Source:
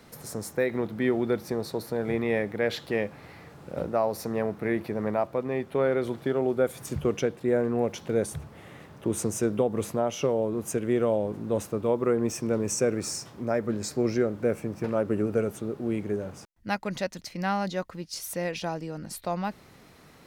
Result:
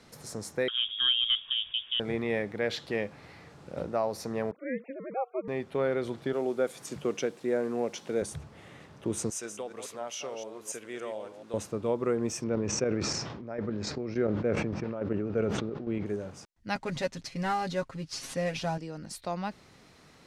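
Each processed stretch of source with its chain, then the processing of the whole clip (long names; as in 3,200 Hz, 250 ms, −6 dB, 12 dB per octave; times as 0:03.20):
0:00.68–0:02.00: parametric band 1,400 Hz −7.5 dB 0.66 octaves + voice inversion scrambler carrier 3,500 Hz
0:04.51–0:05.48: three sine waves on the formant tracks + ring modulation 130 Hz
0:06.33–0:08.22: high-pass filter 200 Hz + bit-depth reduction 10 bits, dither triangular
0:09.30–0:11.54: delay that plays each chunk backwards 142 ms, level −8 dB + high-pass filter 1,400 Hz 6 dB per octave
0:12.44–0:16.06: square-wave tremolo 3.5 Hz, depth 60%, duty 40% + high-frequency loss of the air 200 metres + level that may fall only so fast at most 30 dB per second
0:16.75–0:18.78: variable-slope delta modulation 64 kbit/s + bass and treble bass +6 dB, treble −4 dB + comb filter 7.4 ms, depth 74%
whole clip: low-pass filter 6,500 Hz 12 dB per octave; high-shelf EQ 4,600 Hz +9.5 dB; level −4 dB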